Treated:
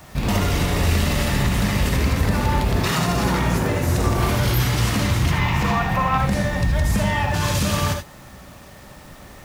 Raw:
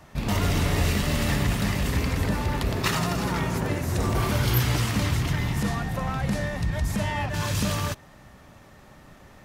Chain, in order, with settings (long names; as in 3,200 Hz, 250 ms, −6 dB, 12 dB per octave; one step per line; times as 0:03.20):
0:05.31–0:06.18: graphic EQ with 15 bands 1,000 Hz +11 dB, 2,500 Hz +8 dB, 10,000 Hz −10 dB
brickwall limiter −18 dBFS, peak gain reduction 7.5 dB
bit reduction 9 bits
reverb whose tail is shaped and stops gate 100 ms rising, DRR 4 dB
level +5.5 dB